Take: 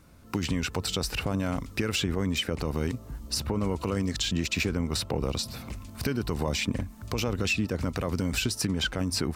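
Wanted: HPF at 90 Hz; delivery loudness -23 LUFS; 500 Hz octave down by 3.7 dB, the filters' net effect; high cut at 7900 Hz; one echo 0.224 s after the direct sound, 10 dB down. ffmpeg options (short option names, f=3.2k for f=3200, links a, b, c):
-af "highpass=90,lowpass=7.9k,equalizer=f=500:t=o:g=-4.5,aecho=1:1:224:0.316,volume=7.5dB"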